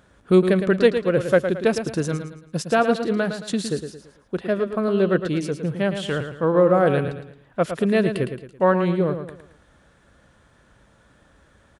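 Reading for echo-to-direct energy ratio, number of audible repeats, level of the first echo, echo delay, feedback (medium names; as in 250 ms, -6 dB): -8.0 dB, 4, -8.5 dB, 111 ms, 38%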